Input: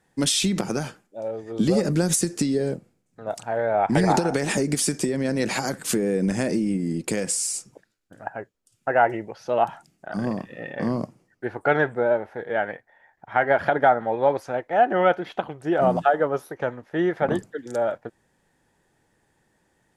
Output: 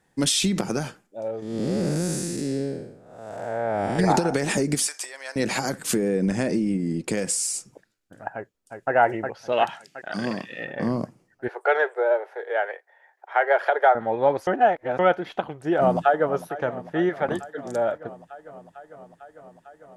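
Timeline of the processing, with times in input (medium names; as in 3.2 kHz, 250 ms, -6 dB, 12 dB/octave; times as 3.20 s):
1.42–3.99 s: spectral blur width 313 ms
4.87–5.36 s: high-pass 780 Hz 24 dB/octave
6.08–7.17 s: treble shelf 9 kHz -9 dB
8.34–8.93 s: echo throw 360 ms, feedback 55%, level -5 dB
9.52–10.65 s: frequency weighting D
11.48–13.95 s: steep high-pass 370 Hz 72 dB/octave
14.47–14.99 s: reverse
15.76–16.33 s: echo throw 450 ms, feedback 80%, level -15 dB
17.09–17.58 s: bass shelf 500 Hz -5.5 dB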